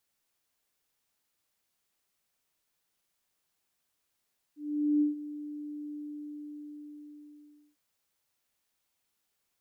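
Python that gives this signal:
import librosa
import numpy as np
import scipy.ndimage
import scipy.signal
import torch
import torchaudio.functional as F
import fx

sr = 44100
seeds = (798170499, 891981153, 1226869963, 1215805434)

y = fx.adsr_tone(sr, wave='sine', hz=296.0, attack_ms=449.0, decay_ms=139.0, sustain_db=-15.5, held_s=1.36, release_ms=1840.0, level_db=-21.5)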